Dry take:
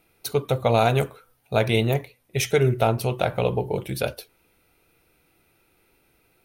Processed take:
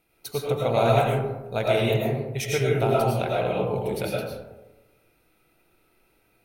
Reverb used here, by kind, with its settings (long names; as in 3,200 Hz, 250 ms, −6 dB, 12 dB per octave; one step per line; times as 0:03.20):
comb and all-pass reverb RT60 1.1 s, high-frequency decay 0.35×, pre-delay 65 ms, DRR −4 dB
level −6.5 dB